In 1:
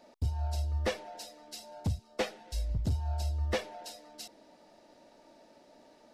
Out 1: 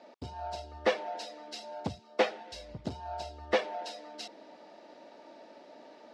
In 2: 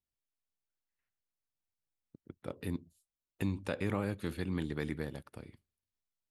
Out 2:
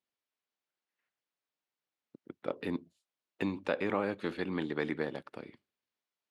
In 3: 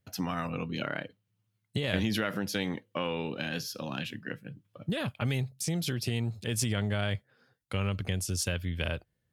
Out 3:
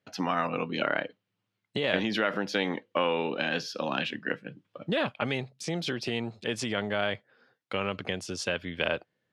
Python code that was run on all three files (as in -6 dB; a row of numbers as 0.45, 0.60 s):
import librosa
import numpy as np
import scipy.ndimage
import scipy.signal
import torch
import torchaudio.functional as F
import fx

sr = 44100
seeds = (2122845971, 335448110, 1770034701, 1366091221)

p1 = fx.dynamic_eq(x, sr, hz=810.0, q=0.85, threshold_db=-45.0, ratio=4.0, max_db=3)
p2 = fx.rider(p1, sr, range_db=4, speed_s=0.5)
p3 = p1 + (p2 * librosa.db_to_amplitude(0.5))
p4 = fx.bandpass_edges(p3, sr, low_hz=260.0, high_hz=4100.0)
y = p4 * librosa.db_to_amplitude(-1.5)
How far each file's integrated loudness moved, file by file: 0.0, +2.0, +2.0 LU